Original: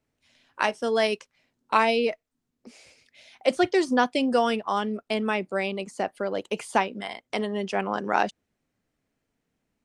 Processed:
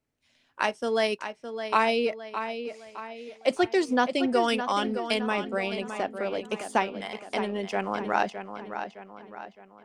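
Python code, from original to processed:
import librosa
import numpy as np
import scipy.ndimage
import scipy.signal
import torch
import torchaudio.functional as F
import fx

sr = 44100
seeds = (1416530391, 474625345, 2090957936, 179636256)

p1 = fx.high_shelf(x, sr, hz=2400.0, db=9.5, at=(4.48, 5.21))
p2 = np.sign(p1) * np.maximum(np.abs(p1) - 10.0 ** (-41.5 / 20.0), 0.0)
p3 = p1 + F.gain(torch.from_numpy(p2), -11.0).numpy()
p4 = fx.echo_filtered(p3, sr, ms=613, feedback_pct=46, hz=4900.0, wet_db=-9)
y = F.gain(torch.from_numpy(p4), -4.0).numpy()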